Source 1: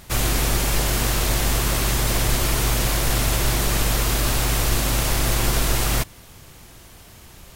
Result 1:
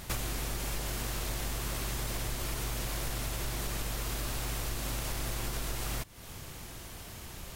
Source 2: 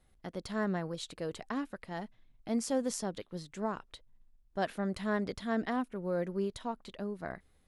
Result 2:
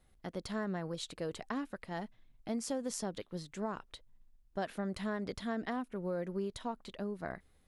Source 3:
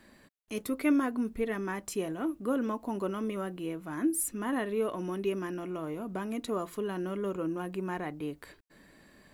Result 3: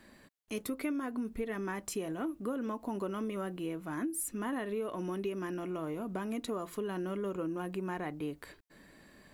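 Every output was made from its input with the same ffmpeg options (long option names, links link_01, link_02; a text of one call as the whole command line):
ffmpeg -i in.wav -af "acompressor=threshold=-32dB:ratio=8" out.wav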